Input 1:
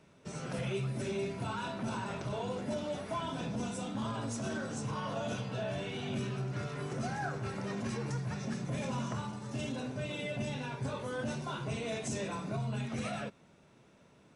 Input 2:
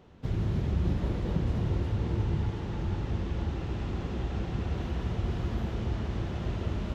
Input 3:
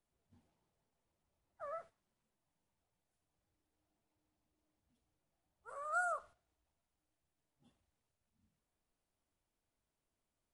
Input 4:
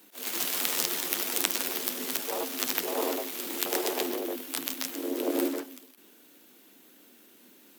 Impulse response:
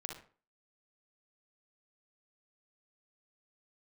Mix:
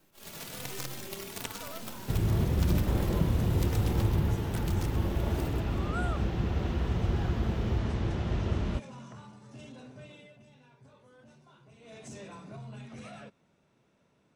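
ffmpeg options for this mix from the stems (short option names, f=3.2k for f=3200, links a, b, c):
-filter_complex "[0:a]asoftclip=type=tanh:threshold=-27.5dB,volume=3dB,afade=t=out:st=10.02:d=0.36:silence=0.298538,afade=t=in:st=11.78:d=0.28:silence=0.237137[a];[1:a]adelay=1850,volume=0dB,asplit=2[b][c];[c]volume=-8.5dB[d];[2:a]volume=-1.5dB[e];[3:a]aeval=exprs='max(val(0),0)':c=same,asplit=2[f][g];[g]adelay=3.3,afreqshift=1[h];[f][h]amix=inputs=2:normalize=1,volume=-3.5dB[i];[4:a]atrim=start_sample=2205[j];[d][j]afir=irnorm=-1:irlink=0[k];[a][b][e][i][k]amix=inputs=5:normalize=0,highshelf=f=12k:g=-6"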